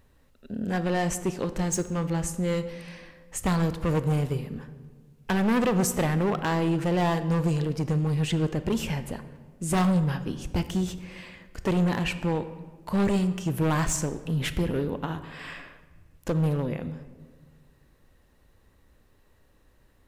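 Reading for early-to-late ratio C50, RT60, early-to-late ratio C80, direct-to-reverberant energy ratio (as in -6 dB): 13.0 dB, 1.6 s, 14.5 dB, 11.5 dB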